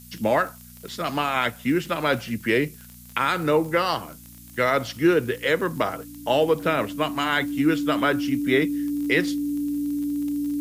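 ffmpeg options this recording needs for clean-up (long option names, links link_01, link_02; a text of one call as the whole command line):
ffmpeg -i in.wav -af "adeclick=threshold=4,bandreject=frequency=59.9:width_type=h:width=4,bandreject=frequency=119.8:width_type=h:width=4,bandreject=frequency=179.7:width_type=h:width=4,bandreject=frequency=239.6:width_type=h:width=4,bandreject=frequency=290:width=30,afftdn=noise_reduction=24:noise_floor=-45" out.wav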